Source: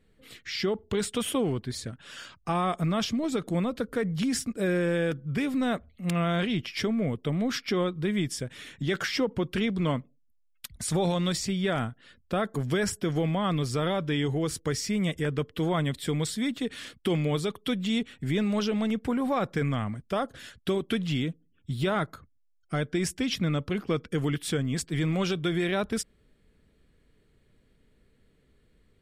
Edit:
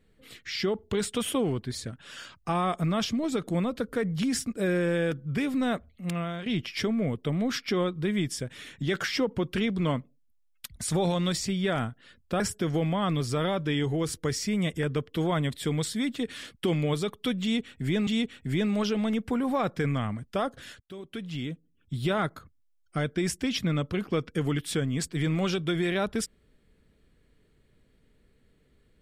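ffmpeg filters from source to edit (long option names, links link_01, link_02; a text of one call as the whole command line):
ffmpeg -i in.wav -filter_complex "[0:a]asplit=5[link_01][link_02][link_03][link_04][link_05];[link_01]atrim=end=6.46,asetpts=PTS-STARTPTS,afade=type=out:start_time=5.61:duration=0.85:curve=qsin:silence=0.223872[link_06];[link_02]atrim=start=6.46:end=12.402,asetpts=PTS-STARTPTS,afade=type=in:duration=0.004:curve=hsin:silence=0.223872[link_07];[link_03]atrim=start=12.818:end=18.492[link_08];[link_04]atrim=start=17.838:end=20.57,asetpts=PTS-STARTPTS,afade=type=out:start_time=2.728:duration=0.004:curve=hsin:silence=0.0668344[link_09];[link_05]atrim=start=20.57,asetpts=PTS-STARTPTS,afade=type=in:duration=1.23:silence=0.0668344[link_10];[link_06][link_07]concat=n=2:v=0:a=1[link_11];[link_11][link_08]acrossfade=duration=0.004:curve1=hsin:curve2=hsin[link_12];[link_09][link_10]concat=n=2:v=0:a=1[link_13];[link_12][link_13]acrossfade=duration=0.004:curve1=hsin:curve2=hsin" out.wav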